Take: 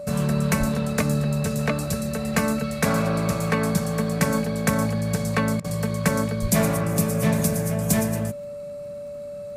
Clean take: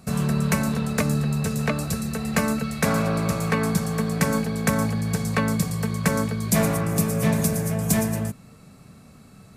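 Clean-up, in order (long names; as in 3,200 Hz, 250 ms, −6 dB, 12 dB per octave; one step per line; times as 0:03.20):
click removal
notch filter 580 Hz, Q 30
0:00.59–0:00.71: high-pass filter 140 Hz 24 dB per octave
0:06.41–0:06.53: high-pass filter 140 Hz 24 dB per octave
repair the gap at 0:05.60, 42 ms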